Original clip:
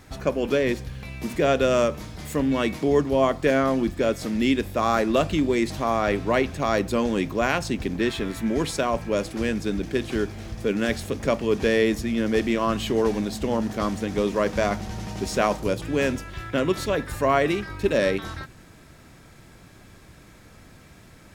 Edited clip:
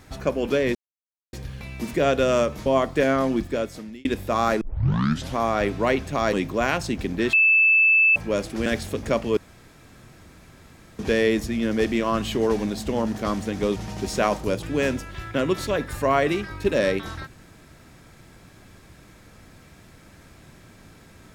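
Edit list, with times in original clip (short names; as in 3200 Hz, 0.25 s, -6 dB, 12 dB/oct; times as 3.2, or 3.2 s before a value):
0.75 insert silence 0.58 s
2.08–3.13 cut
3.85–4.52 fade out
5.08 tape start 0.76 s
6.8–7.14 cut
8.14–8.97 bleep 2630 Hz -13.5 dBFS
9.47–10.83 cut
11.54 insert room tone 1.62 s
14.31–14.95 cut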